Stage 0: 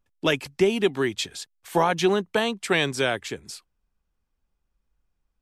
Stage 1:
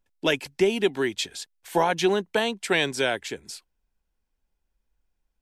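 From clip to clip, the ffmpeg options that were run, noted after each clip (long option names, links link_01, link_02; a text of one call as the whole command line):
ffmpeg -i in.wav -af "equalizer=frequency=110:width_type=o:width=1.6:gain=-6.5,bandreject=frequency=1200:width=6" out.wav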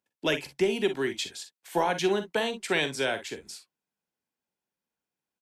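ffmpeg -i in.wav -filter_complex "[0:a]acrossover=split=120|900[link_01][link_02][link_03];[link_01]aeval=exprs='val(0)*gte(abs(val(0)),0.00112)':channel_layout=same[link_04];[link_04][link_02][link_03]amix=inputs=3:normalize=0,aecho=1:1:45|58:0.282|0.188,volume=-4dB" out.wav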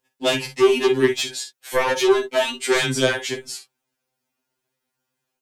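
ffmpeg -i in.wav -af "aeval=exprs='0.251*sin(PI/2*2.82*val(0)/0.251)':channel_layout=same,afftfilt=real='re*2.45*eq(mod(b,6),0)':imag='im*2.45*eq(mod(b,6),0)':win_size=2048:overlap=0.75" out.wav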